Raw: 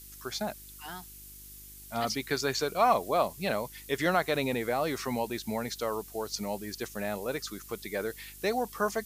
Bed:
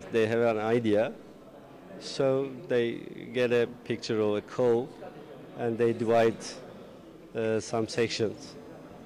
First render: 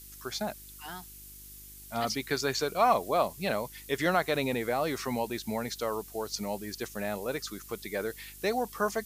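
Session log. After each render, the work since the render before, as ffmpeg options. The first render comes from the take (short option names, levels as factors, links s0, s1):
-af anull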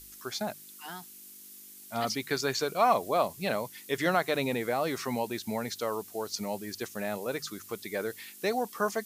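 -af "bandreject=f=50:t=h:w=4,bandreject=f=100:t=h:w=4,bandreject=f=150:t=h:w=4"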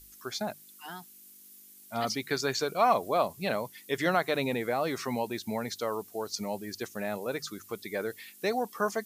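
-af "afftdn=nr=6:nf=-50"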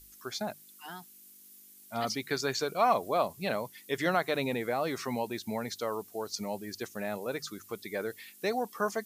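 -af "volume=0.841"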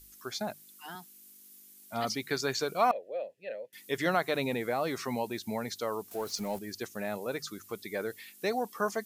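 -filter_complex "[0:a]asettb=1/sr,asplit=3[s0][s1][s2];[s0]atrim=end=0.954[s3];[s1]atrim=start=0.95:end=1.93,asetpts=PTS-STARTPTS,afade=t=in:d=0.004:c=qsin,afade=t=out:st=0.976:d=0.004:c=qsin,highpass=f=140:w=0.5412,highpass=f=140:w=1.3066[s4];[s2]atrim=start=1.926[s5];[s3][s4]acrossfade=d=0.004:c1=hsin:c2=qsin[s6];[s6][s5]acrossfade=d=0.004:c1=qsin:c2=hsin,asettb=1/sr,asplit=3[s7][s8][s9];[s7]atrim=end=2.914[s10];[s8]atrim=start=2.91:end=3.73,asetpts=PTS-STARTPTS,afade=t=in:d=0.004:c=qsin,afade=t=out:st=0.816:d=0.004:c=qsin,asplit=3[s11][s12][s13];[s11]bandpass=f=530:t=q:w=8,volume=1[s14];[s12]bandpass=f=1840:t=q:w=8,volume=0.501[s15];[s13]bandpass=f=2480:t=q:w=8,volume=0.355[s16];[s14][s15][s16]amix=inputs=3:normalize=0[s17];[s9]atrim=start=3.726[s18];[s10][s17]acrossfade=d=0.004:c1=hsin:c2=qsin[s19];[s19][s18]acrossfade=d=0.004:c1=qsin:c2=hsin,asettb=1/sr,asplit=3[s20][s21][s22];[s20]atrim=end=6.114[s23];[s21]atrim=start=6.11:end=6.59,asetpts=PTS-STARTPTS,afade=t=in:d=0.004:c=qsin,afade=t=out:st=0.476:d=0.004:c=qsin,aeval=exprs='val(0)+0.5*0.00668*sgn(val(0))':c=same[s24];[s22]atrim=start=6.586[s25];[s23][s24]acrossfade=d=0.004:c1=hsin:c2=qsin[s26];[s26][s25]acrossfade=d=0.004:c1=qsin:c2=hsin"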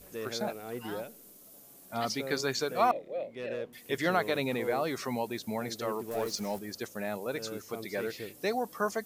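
-filter_complex "[1:a]volume=0.211[s0];[0:a][s0]amix=inputs=2:normalize=0"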